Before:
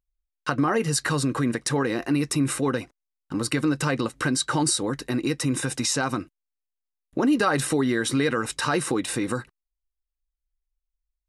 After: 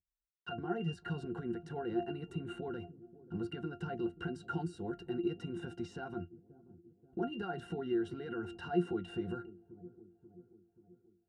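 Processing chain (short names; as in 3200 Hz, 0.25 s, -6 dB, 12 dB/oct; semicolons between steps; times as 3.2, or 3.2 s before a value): 2.16–2.67 notch 5200 Hz, Q 5.4; 4.34–5.1 high shelf 6300 Hz +9 dB; limiter -16 dBFS, peak gain reduction 9 dB; octave resonator F, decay 0.13 s; dark delay 0.533 s, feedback 55%, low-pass 440 Hz, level -16 dB; gain +1 dB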